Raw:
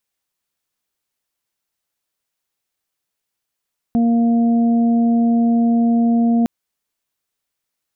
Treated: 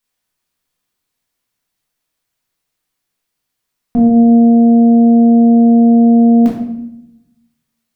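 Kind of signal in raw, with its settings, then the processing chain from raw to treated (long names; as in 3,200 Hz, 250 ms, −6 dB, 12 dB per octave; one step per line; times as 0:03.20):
steady harmonic partials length 2.51 s, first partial 233 Hz, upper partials −18.5/−14 dB, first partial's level −12 dB
rectangular room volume 230 cubic metres, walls mixed, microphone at 1.8 metres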